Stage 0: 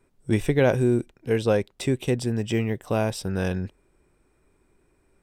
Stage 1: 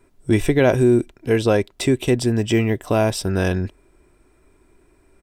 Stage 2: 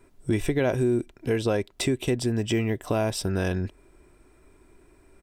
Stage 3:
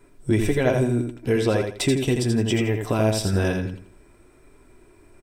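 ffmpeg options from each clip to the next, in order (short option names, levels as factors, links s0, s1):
-filter_complex "[0:a]aecho=1:1:3:0.32,asplit=2[s0][s1];[s1]alimiter=limit=0.15:level=0:latency=1:release=113,volume=1.26[s2];[s0][s2]amix=inputs=2:normalize=0"
-af "acompressor=threshold=0.0447:ratio=2"
-filter_complex "[0:a]flanger=delay=6.8:depth=2.7:regen=-38:speed=1.1:shape=sinusoidal,asplit=2[s0][s1];[s1]aecho=0:1:83|166|249|332:0.531|0.143|0.0387|0.0104[s2];[s0][s2]amix=inputs=2:normalize=0,volume=2.11"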